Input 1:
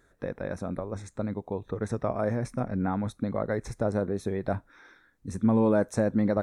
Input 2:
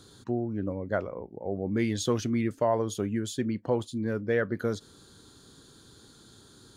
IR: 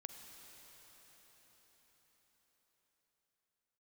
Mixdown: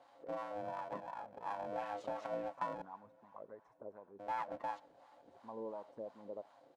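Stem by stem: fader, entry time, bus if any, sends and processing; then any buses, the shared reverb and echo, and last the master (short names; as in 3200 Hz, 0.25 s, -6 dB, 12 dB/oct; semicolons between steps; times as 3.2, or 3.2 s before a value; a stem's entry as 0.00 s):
-16.0 dB, 0.00 s, no send, echo send -21.5 dB, bell 1000 Hz +12.5 dB 0.48 oct; envelope flanger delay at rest 6.3 ms, full sweep at -20.5 dBFS
-4.5 dB, 0.00 s, muted 2.82–4.19, send -11 dB, no echo send, comb 6.9 ms, depth 61%; compressor 6:1, threshold -27 dBFS, peak gain reduction 8.5 dB; polarity switched at an audio rate 410 Hz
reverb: on, RT60 5.9 s, pre-delay 38 ms
echo: echo 86 ms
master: low shelf 120 Hz -4.5 dB; wah 2.8 Hz 440–1000 Hz, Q 2.1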